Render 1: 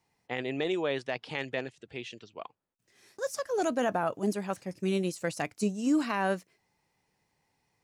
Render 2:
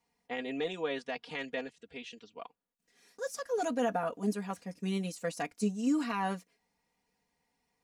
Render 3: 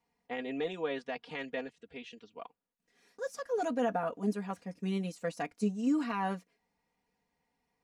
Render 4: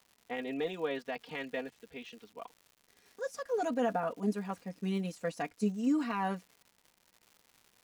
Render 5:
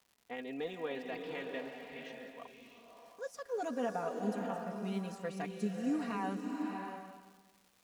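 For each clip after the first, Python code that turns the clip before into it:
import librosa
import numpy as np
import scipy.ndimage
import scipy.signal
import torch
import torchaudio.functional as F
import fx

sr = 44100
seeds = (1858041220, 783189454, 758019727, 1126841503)

y1 = x + 0.91 * np.pad(x, (int(4.2 * sr / 1000.0), 0))[:len(x)]
y1 = y1 * 10.0 ** (-6.0 / 20.0)
y2 = fx.high_shelf(y1, sr, hz=4100.0, db=-9.0)
y3 = fx.dmg_crackle(y2, sr, seeds[0], per_s=230.0, level_db=-48.0)
y4 = fx.rev_bloom(y3, sr, seeds[1], attack_ms=660, drr_db=3.0)
y4 = y4 * 10.0 ** (-5.0 / 20.0)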